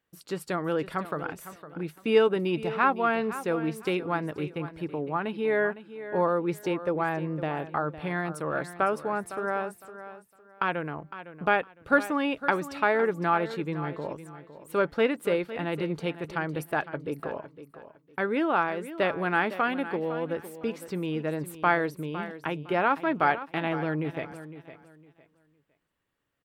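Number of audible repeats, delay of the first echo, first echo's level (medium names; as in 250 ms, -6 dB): 2, 508 ms, -13.5 dB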